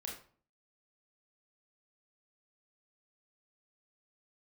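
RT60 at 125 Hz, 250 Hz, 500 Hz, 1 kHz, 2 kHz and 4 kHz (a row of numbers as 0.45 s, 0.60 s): 0.60 s, 0.60 s, 0.45 s, 0.45 s, 0.35 s, 0.30 s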